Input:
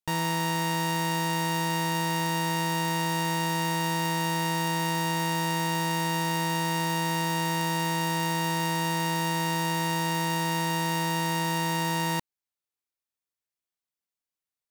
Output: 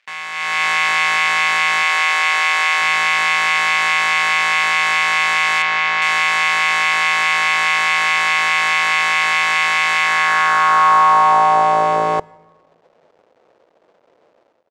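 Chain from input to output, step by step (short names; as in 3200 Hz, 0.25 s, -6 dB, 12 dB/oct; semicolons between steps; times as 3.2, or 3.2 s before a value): crackle 470/s -56 dBFS; downsampling 16000 Hz; full-wave rectifier; band-pass sweep 2200 Hz -> 520 Hz, 9.98–12.08; in parallel at +0.5 dB: limiter -39.5 dBFS, peak gain reduction 10.5 dB; 5.62–6.02 on the sum: air absorption 120 m; on a send at -22 dB: reverb RT60 1.4 s, pre-delay 7 ms; on the sum: AGC gain up to 14 dB; 1.83–2.82 HPF 300 Hz 12 dB/oct; gain +8.5 dB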